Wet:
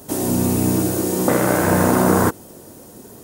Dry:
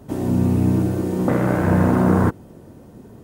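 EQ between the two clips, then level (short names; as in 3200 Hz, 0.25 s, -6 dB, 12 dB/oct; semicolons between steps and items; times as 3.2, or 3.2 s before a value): tone controls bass -9 dB, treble +12 dB; high shelf 6000 Hz +4.5 dB; +4.5 dB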